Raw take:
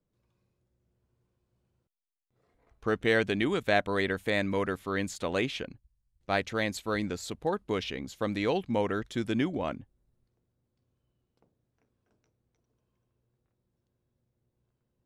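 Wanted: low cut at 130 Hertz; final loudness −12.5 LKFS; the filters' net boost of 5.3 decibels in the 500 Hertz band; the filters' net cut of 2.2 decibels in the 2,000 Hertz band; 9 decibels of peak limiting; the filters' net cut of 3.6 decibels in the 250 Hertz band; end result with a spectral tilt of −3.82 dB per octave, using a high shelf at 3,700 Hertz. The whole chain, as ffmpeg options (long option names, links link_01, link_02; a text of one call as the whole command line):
ffmpeg -i in.wav -af "highpass=130,equalizer=frequency=250:width_type=o:gain=-8,equalizer=frequency=500:width_type=o:gain=8.5,equalizer=frequency=2000:width_type=o:gain=-5,highshelf=frequency=3700:gain=7.5,volume=18.5dB,alimiter=limit=-0.5dB:level=0:latency=1" out.wav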